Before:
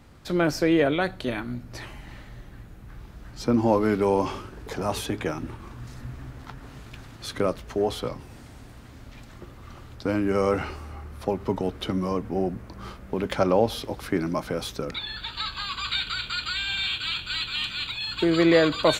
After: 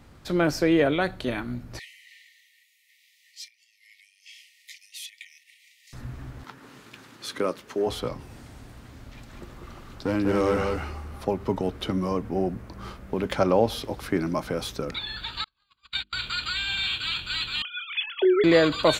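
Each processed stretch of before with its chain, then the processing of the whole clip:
1.79–5.93 compressor 8:1, threshold -32 dBFS + brick-wall FIR high-pass 1800 Hz
6.44–7.87 HPF 240 Hz + bell 690 Hz -7 dB 0.39 oct
9.14–11.23 hard clip -18 dBFS + echo 0.196 s -4 dB
15.44–16.13 gate -27 dBFS, range -42 dB + notches 50/100/150/200/250/300/350 Hz
17.62–18.44 sine-wave speech + doubler 27 ms -14 dB
whole clip: dry

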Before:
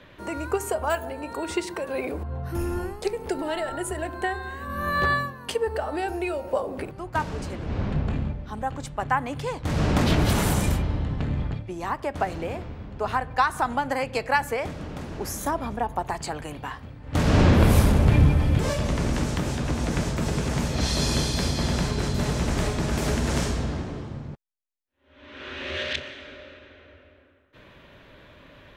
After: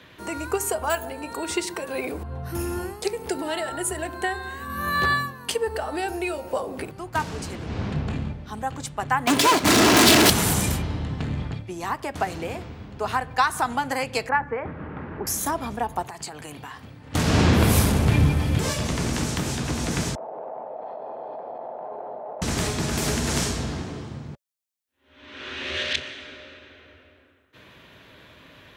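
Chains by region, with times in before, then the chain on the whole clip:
9.27–10.3 minimum comb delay 3 ms + HPF 170 Hz + sample leveller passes 5
14.29–15.27 LPF 1800 Hz 24 dB/oct + notch 690 Hz, Q 8.9 + mismatched tape noise reduction encoder only
16.03–17.14 compressor, threshold -34 dBFS + HPF 85 Hz
20.15–22.42 Butterworth band-pass 680 Hz, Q 2.3 + air absorption 340 m + fast leveller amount 100%
whole clip: HPF 70 Hz; high shelf 3300 Hz +8.5 dB; notch 570 Hz, Q 12

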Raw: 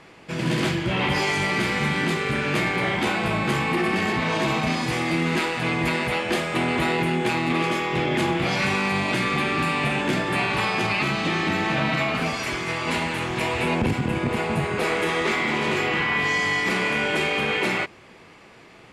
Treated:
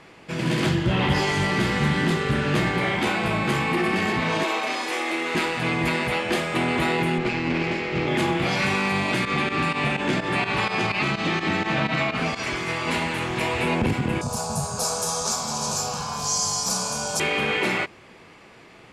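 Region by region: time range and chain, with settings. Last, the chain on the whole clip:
0.66–2.81 low shelf 160 Hz +8 dB + notch 2300 Hz, Q 7.8 + Doppler distortion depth 0.1 ms
4.43–5.35 HPF 340 Hz 24 dB/oct + notch 4700 Hz, Q 28
7.18–8.08 minimum comb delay 0.4 ms + air absorption 110 m
9.25–12.56 LPF 8200 Hz + pump 126 bpm, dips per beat 2, -13 dB, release 79 ms
14.21–17.2 resonant high shelf 4200 Hz +12 dB, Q 3 + fixed phaser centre 830 Hz, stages 4
whole clip: dry

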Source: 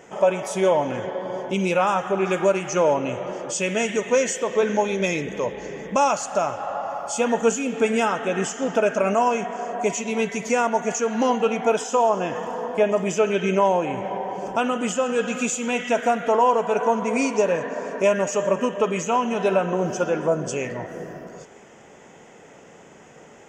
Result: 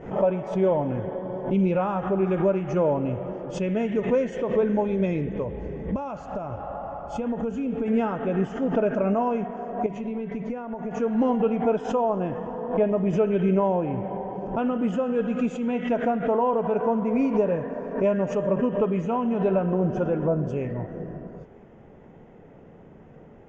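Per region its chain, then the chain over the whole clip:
5.42–7.88 bell 74 Hz +14 dB 0.53 oct + notch 1800 Hz, Q 29 + compressor, threshold -23 dBFS
9.86–11 high shelf 6000 Hz -10.5 dB + notches 50/100/150/200/250 Hz + compressor, threshold -26 dBFS
whole clip: LPF 3800 Hz 12 dB/oct; tilt -4.5 dB/oct; backwards sustainer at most 110 dB/s; gain -7.5 dB

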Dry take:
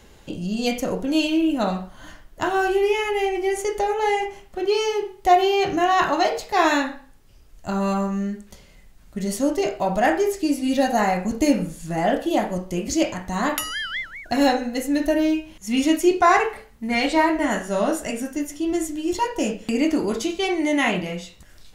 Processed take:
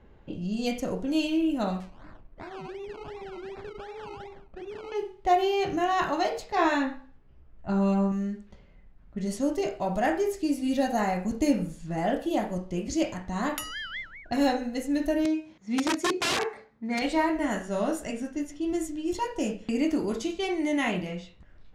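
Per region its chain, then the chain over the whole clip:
1.8–4.92 compressor, threshold -31 dBFS + decimation with a swept rate 20×, swing 60% 2.7 Hz
6.55–8.12 LPF 3300 Hz 6 dB/oct + doubler 15 ms -3 dB
15.25–17.02 bell 2900 Hz -11 dB 0.23 oct + wrapped overs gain 13 dB + BPF 150–7300 Hz
whole clip: low-pass opened by the level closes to 1700 Hz, open at -19.5 dBFS; low shelf 390 Hz +4.5 dB; gain -8 dB

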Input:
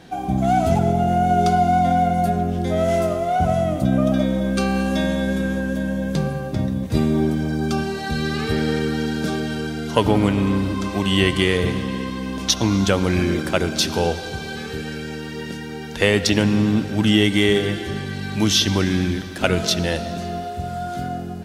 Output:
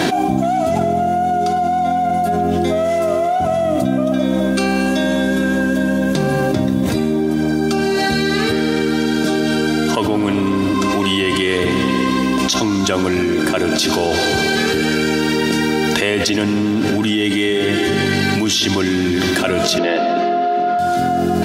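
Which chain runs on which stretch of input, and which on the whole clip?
19.78–20.79 HPF 240 Hz 24 dB/oct + air absorption 270 m
whole clip: HPF 150 Hz 12 dB/oct; comb 3 ms, depth 41%; fast leveller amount 100%; gain -4 dB

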